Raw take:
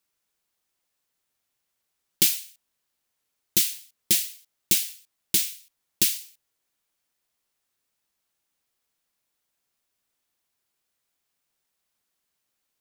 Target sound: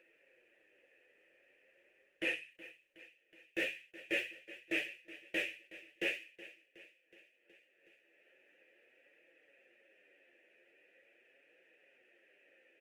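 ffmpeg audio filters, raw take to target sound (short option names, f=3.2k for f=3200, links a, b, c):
-filter_complex "[0:a]highpass=72,aeval=exprs='0.596*(cos(1*acos(clip(val(0)/0.596,-1,1)))-cos(1*PI/2))+0.0944*(cos(3*acos(clip(val(0)/0.596,-1,1)))-cos(3*PI/2))+0.133*(cos(4*acos(clip(val(0)/0.596,-1,1)))-cos(4*PI/2))+0.0596*(cos(5*acos(clip(val(0)/0.596,-1,1)))-cos(5*PI/2))+0.0266*(cos(7*acos(clip(val(0)/0.596,-1,1)))-cos(7*PI/2))':c=same,equalizer=f=340:t=o:w=0.51:g=13,flanger=delay=5.9:depth=6.5:regen=-7:speed=0.43:shape=triangular,highshelf=f=3.2k:t=q:w=3:g=-9,bandreject=f=50:t=h:w=6,bandreject=f=100:t=h:w=6,bandreject=f=150:t=h:w=6,areverse,acompressor=threshold=-33dB:ratio=20,areverse,aecho=1:1:370|740|1110|1480|1850:0.141|0.0735|0.0382|0.0199|0.0103,acompressor=mode=upward:threshold=-58dB:ratio=2.5,asplit=3[a][b][c];[a]bandpass=f=530:t=q:w=8,volume=0dB[d];[b]bandpass=f=1.84k:t=q:w=8,volume=-6dB[e];[c]bandpass=f=2.48k:t=q:w=8,volume=-9dB[f];[d][e][f]amix=inputs=3:normalize=0,volume=17dB" -ar 48000 -c:a libopus -b:a 32k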